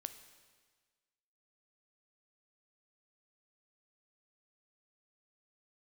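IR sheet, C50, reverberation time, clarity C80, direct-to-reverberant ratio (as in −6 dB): 11.5 dB, 1.5 s, 12.5 dB, 9.5 dB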